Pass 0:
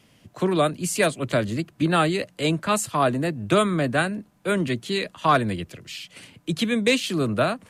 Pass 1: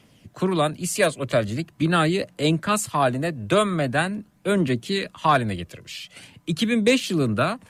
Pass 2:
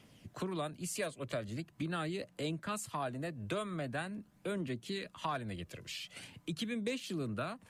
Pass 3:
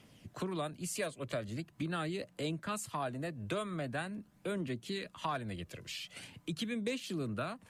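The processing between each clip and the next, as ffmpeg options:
-af "aphaser=in_gain=1:out_gain=1:delay=2:decay=0.31:speed=0.43:type=triangular"
-af "acompressor=threshold=-35dB:ratio=2.5,volume=-5.5dB"
-af "volume=1dB" -ar 48000 -c:a libmp3lame -b:a 128k

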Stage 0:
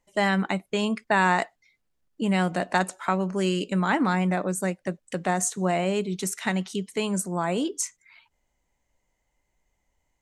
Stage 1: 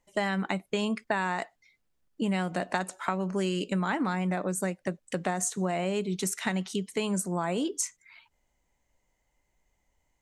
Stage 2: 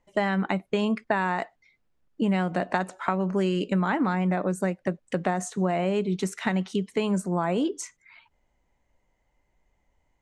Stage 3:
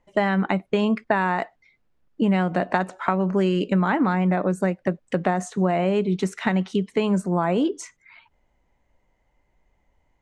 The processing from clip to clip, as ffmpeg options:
-af "acompressor=threshold=-25dB:ratio=5"
-af "aemphasis=mode=reproduction:type=75kf,volume=4.5dB"
-af "lowpass=f=4k:p=1,volume=4dB"

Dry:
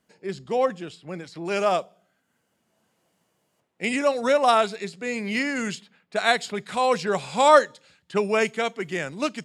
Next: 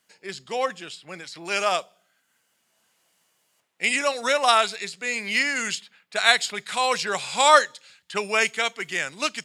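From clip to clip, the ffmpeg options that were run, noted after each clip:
-af "tiltshelf=f=850:g=-9,volume=-1dB"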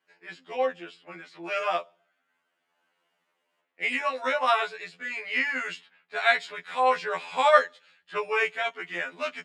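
-filter_complex "[0:a]acrossover=split=220 3000:gain=0.178 1 0.1[a][b][c];[a][b][c]amix=inputs=3:normalize=0,afftfilt=real='re*2*eq(mod(b,4),0)':imag='im*2*eq(mod(b,4),0)':win_size=2048:overlap=0.75"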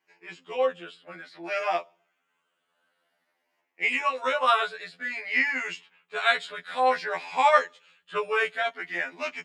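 -af "afftfilt=real='re*pow(10,7/40*sin(2*PI*(0.73*log(max(b,1)*sr/1024/100)/log(2)-(0.54)*(pts-256)/sr)))':imag='im*pow(10,7/40*sin(2*PI*(0.73*log(max(b,1)*sr/1024/100)/log(2)-(0.54)*(pts-256)/sr)))':win_size=1024:overlap=0.75"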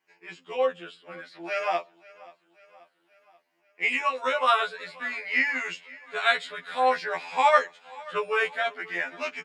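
-af "aecho=1:1:533|1066|1599|2132:0.0794|0.0429|0.0232|0.0125"

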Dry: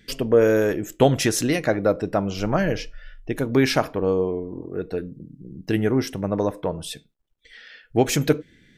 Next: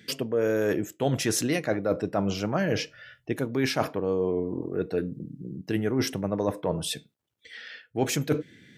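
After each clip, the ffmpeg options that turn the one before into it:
-af "highpass=f=91:w=0.5412,highpass=f=91:w=1.3066,areverse,acompressor=threshold=-25dB:ratio=6,areverse,volume=2.5dB"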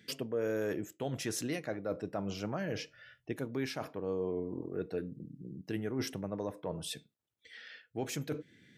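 -af "alimiter=limit=-16.5dB:level=0:latency=1:release=331,volume=-8dB"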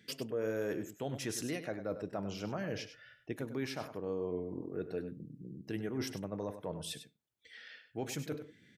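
-af "aecho=1:1:99:0.282,volume=-2dB"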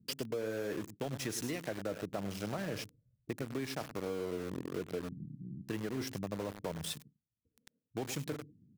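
-filter_complex "[0:a]acrossover=split=270[a][b];[b]aeval=exprs='val(0)*gte(abs(val(0)),0.0075)':c=same[c];[a][c]amix=inputs=2:normalize=0,acompressor=threshold=-38dB:ratio=6,volume=4.5dB"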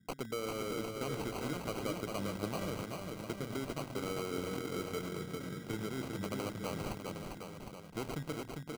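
-af "acrusher=samples=25:mix=1:aa=0.000001,aecho=1:1:400|760|1084|1376|1638:0.631|0.398|0.251|0.158|0.1,volume=-1.5dB"

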